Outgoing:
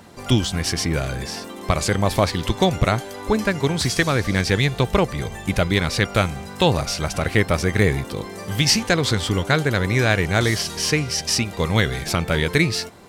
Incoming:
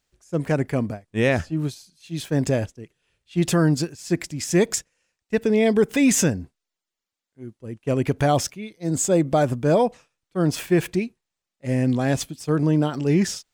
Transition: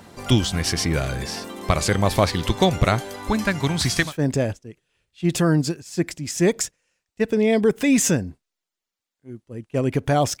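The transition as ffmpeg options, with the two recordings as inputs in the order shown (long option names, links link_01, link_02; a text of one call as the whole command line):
ffmpeg -i cue0.wav -i cue1.wav -filter_complex "[0:a]asettb=1/sr,asplit=3[link_01][link_02][link_03];[link_01]atrim=end=3.164[link_04];[link_02]atrim=start=3.16:end=4.13,asetpts=PTS-STARTPTS,afade=type=in:duration=0.004:curve=qsin,afade=type=out:start_time=0.966:duration=0.004:curve=qsin,equalizer=frequency=450:width=2.7:gain=-8.5[link_05];[link_03]atrim=start=4.126[link_06];[link_04][link_05]acrossfade=duration=0.004:curve1=hsin:curve2=qsin[link_07];[link_07][link_06]acrossfade=duration=0.004:curve1=qsin:curve2=hsin,apad=whole_dur=10.4,atrim=end=10.4,atrim=end=4.13,asetpts=PTS-STARTPTS[link_08];[1:a]atrim=start=2.12:end=8.53,asetpts=PTS-STARTPTS[link_09];[link_08][link_09]acrossfade=duration=0.14:curve1=tri:curve2=tri" out.wav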